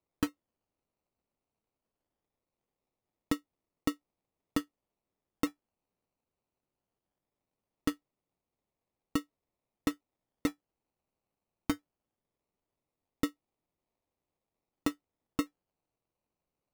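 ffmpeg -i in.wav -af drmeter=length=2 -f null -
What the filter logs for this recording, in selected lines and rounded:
Channel 1: DR: 21.7
Overall DR: 21.7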